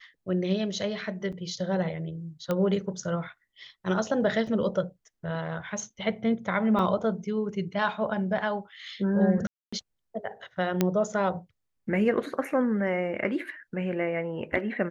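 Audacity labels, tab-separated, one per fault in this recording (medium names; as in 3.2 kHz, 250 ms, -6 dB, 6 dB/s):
1.320000	1.330000	dropout 5.8 ms
2.510000	2.510000	pop -15 dBFS
4.470000	4.470000	dropout 3.7 ms
6.790000	6.790000	dropout 2.1 ms
9.470000	9.720000	dropout 255 ms
10.810000	10.810000	pop -9 dBFS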